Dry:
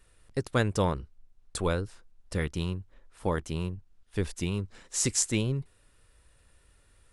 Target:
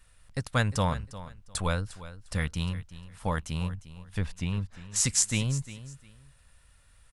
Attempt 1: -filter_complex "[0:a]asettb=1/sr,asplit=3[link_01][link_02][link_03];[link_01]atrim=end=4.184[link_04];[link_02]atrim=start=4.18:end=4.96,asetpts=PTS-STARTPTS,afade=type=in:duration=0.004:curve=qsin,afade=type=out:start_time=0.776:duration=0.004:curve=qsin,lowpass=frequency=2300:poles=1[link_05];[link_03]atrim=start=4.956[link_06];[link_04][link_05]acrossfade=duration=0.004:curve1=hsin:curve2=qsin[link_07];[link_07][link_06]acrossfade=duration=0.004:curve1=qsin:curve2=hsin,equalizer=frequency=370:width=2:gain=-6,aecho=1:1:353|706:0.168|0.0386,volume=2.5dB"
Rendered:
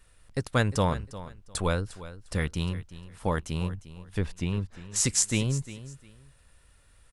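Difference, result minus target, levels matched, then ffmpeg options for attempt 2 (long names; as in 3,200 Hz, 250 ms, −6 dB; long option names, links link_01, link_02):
500 Hz band +3.5 dB
-filter_complex "[0:a]asettb=1/sr,asplit=3[link_01][link_02][link_03];[link_01]atrim=end=4.184[link_04];[link_02]atrim=start=4.18:end=4.96,asetpts=PTS-STARTPTS,afade=type=in:duration=0.004:curve=qsin,afade=type=out:start_time=0.776:duration=0.004:curve=qsin,lowpass=frequency=2300:poles=1[link_05];[link_03]atrim=start=4.956[link_06];[link_04][link_05]acrossfade=duration=0.004:curve1=hsin:curve2=qsin[link_07];[link_07][link_06]acrossfade=duration=0.004:curve1=qsin:curve2=hsin,equalizer=frequency=370:width=2:gain=-16.5,aecho=1:1:353|706:0.168|0.0386,volume=2.5dB"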